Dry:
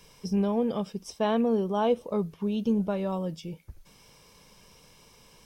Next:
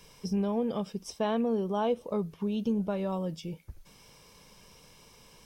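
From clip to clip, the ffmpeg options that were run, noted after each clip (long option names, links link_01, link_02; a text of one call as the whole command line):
ffmpeg -i in.wav -af "acompressor=threshold=-31dB:ratio=1.5" out.wav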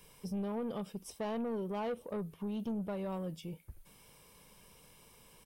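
ffmpeg -i in.wav -af "firequalizer=gain_entry='entry(3100,0);entry(5600,-6);entry(9300,7)':delay=0.05:min_phase=1,asoftclip=type=tanh:threshold=-27.5dB,volume=-4.5dB" out.wav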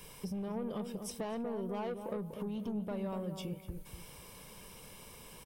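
ffmpeg -i in.wav -filter_complex "[0:a]acompressor=threshold=-45dB:ratio=6,asplit=2[link_01][link_02];[link_02]adelay=245,lowpass=frequency=1000:poles=1,volume=-6dB,asplit=2[link_03][link_04];[link_04]adelay=245,lowpass=frequency=1000:poles=1,volume=0.35,asplit=2[link_05][link_06];[link_06]adelay=245,lowpass=frequency=1000:poles=1,volume=0.35,asplit=2[link_07][link_08];[link_08]adelay=245,lowpass=frequency=1000:poles=1,volume=0.35[link_09];[link_03][link_05][link_07][link_09]amix=inputs=4:normalize=0[link_10];[link_01][link_10]amix=inputs=2:normalize=0,volume=7.5dB" out.wav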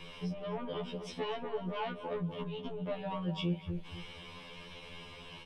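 ffmpeg -i in.wav -af "lowpass=frequency=3200:width_type=q:width=2.3,afftfilt=real='re*2*eq(mod(b,4),0)':imag='im*2*eq(mod(b,4),0)':win_size=2048:overlap=0.75,volume=5.5dB" out.wav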